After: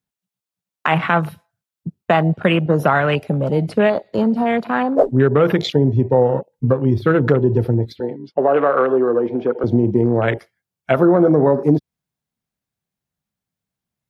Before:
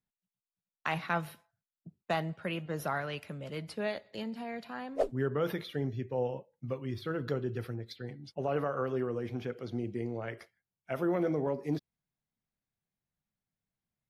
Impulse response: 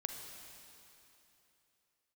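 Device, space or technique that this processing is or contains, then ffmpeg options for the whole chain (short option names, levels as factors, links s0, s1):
mastering chain: -filter_complex "[0:a]highpass=46,equalizer=f=2000:t=o:w=0.53:g=-2,acompressor=threshold=0.02:ratio=3,asoftclip=type=hard:threshold=0.0794,alimiter=level_in=17.8:limit=0.891:release=50:level=0:latency=1,afwtdn=0.0794,asettb=1/sr,asplit=3[s0][s1][s2];[s0]atrim=end=8.004[s3];[s1]atrim=start=8:end=9.64,asetpts=PTS-STARTPTS,afade=t=in:d=0.004:c=qsin,afade=t=out:st=1.636:d=0.004:c=qsin,acrossover=split=240 4400:gain=0.0708 1 0.126[s4][s5][s6];[s4][s5][s6]amix=inputs=3:normalize=0[s7];[s2]atrim=start=9.636[s8];[s3][s7]acrossfade=d=0.004:c1=hsin:c2=qsin[s9];[s9][s8]acrossfade=d=0.004:c1=qsin:c2=hsin,volume=0.794"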